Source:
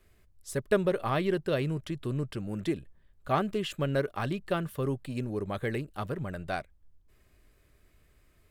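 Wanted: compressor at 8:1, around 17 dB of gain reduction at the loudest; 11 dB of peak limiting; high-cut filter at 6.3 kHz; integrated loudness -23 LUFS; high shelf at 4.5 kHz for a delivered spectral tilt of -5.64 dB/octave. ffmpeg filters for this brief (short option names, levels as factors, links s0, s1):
-af "lowpass=6300,highshelf=f=4500:g=5.5,acompressor=threshold=0.0112:ratio=8,volume=17.8,alimiter=limit=0.211:level=0:latency=1"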